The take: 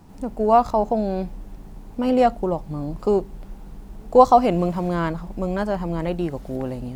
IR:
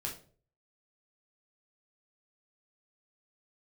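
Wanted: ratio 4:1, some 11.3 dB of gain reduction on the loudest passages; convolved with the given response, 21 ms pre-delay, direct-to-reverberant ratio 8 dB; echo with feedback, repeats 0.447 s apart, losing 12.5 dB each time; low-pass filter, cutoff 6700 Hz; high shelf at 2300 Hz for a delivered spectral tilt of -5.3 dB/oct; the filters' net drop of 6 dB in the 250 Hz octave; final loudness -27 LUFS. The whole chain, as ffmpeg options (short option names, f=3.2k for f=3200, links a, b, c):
-filter_complex "[0:a]lowpass=6.7k,equalizer=f=250:t=o:g=-8.5,highshelf=f=2.3k:g=8.5,acompressor=threshold=-21dB:ratio=4,aecho=1:1:447|894|1341:0.237|0.0569|0.0137,asplit=2[a][b];[1:a]atrim=start_sample=2205,adelay=21[c];[b][c]afir=irnorm=-1:irlink=0,volume=-8.5dB[d];[a][d]amix=inputs=2:normalize=0,volume=0.5dB"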